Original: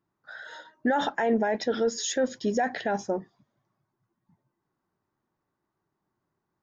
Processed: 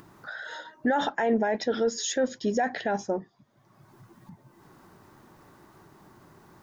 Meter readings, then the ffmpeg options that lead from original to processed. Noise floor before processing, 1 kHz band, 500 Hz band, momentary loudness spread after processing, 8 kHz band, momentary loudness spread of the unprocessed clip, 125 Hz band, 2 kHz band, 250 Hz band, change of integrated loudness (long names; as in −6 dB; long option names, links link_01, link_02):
−82 dBFS, 0.0 dB, 0.0 dB, 13 LU, can't be measured, 17 LU, +0.5 dB, +0.5 dB, 0.0 dB, −0.5 dB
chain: -af "acompressor=mode=upward:threshold=-32dB:ratio=2.5"